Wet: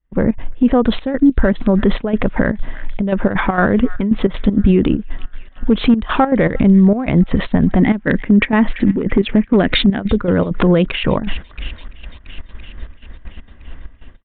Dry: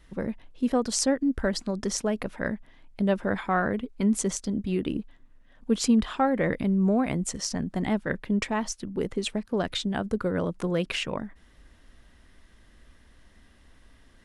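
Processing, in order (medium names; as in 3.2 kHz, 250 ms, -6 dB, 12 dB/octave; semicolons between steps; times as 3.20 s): local Wiener filter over 9 samples; 7.79–10.00 s: ten-band graphic EQ 250 Hz +10 dB, 500 Hz +3 dB, 2 kHz +9 dB; level rider gain up to 7.5 dB; expander -39 dBFS; feedback echo behind a high-pass 338 ms, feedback 69%, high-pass 2 kHz, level -23.5 dB; hard clipper -7.5 dBFS, distortion -25 dB; compression 6:1, threshold -24 dBFS, peak gain reduction 13 dB; resampled via 8 kHz; trance gate "..xx.xx.xxxxx" 197 bpm -12 dB; bass shelf 80 Hz +9.5 dB; loudness maximiser +21 dB; trim -3 dB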